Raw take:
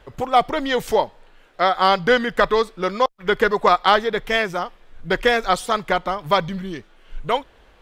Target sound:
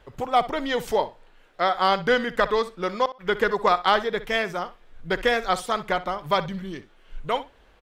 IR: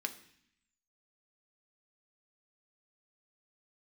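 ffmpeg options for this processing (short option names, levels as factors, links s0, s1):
-filter_complex "[0:a]asplit=2[s0][s1];[s1]adelay=62,lowpass=f=4700:p=1,volume=0.178,asplit=2[s2][s3];[s3]adelay=62,lowpass=f=4700:p=1,volume=0.16[s4];[s0][s2][s4]amix=inputs=3:normalize=0,volume=0.596"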